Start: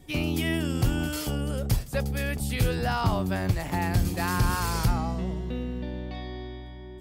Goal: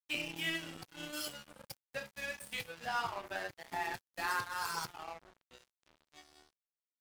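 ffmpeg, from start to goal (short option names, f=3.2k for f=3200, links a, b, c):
-af "aecho=1:1:30|67.5|114.4|173|246.2:0.631|0.398|0.251|0.158|0.1,acompressor=threshold=-24dB:ratio=12,highpass=f=1.3k:p=1,afftdn=nr=14:nf=-36,aeval=exprs='sgn(val(0))*max(abs(val(0))-0.00596,0)':c=same,volume=3dB"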